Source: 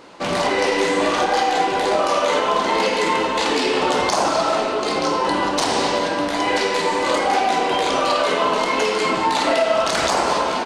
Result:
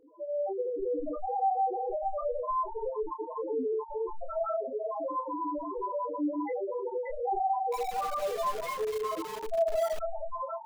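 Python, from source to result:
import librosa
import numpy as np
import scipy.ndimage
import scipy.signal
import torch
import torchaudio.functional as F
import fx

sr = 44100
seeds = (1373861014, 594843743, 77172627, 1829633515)

y = np.minimum(x, 2.0 * 10.0 ** (-18.0 / 20.0) - x)
y = y + 10.0 ** (-6.5 / 20.0) * np.pad(y, (int(481 * sr / 1000.0), 0))[:len(y)]
y = fx.spec_topn(y, sr, count=1)
y = fx.high_shelf(y, sr, hz=2000.0, db=-6.0)
y = fx.notch(y, sr, hz=900.0, q=22.0)
y = fx.doubler(y, sr, ms=27.0, db=-7.5)
y = fx.echo_crushed(y, sr, ms=241, feedback_pct=55, bits=6, wet_db=-6.0, at=(7.48, 9.99))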